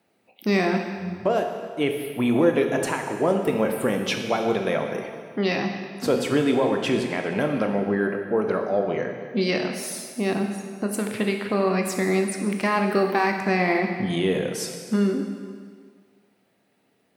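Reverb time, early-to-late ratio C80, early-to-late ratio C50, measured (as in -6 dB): 1.8 s, 6.5 dB, 5.5 dB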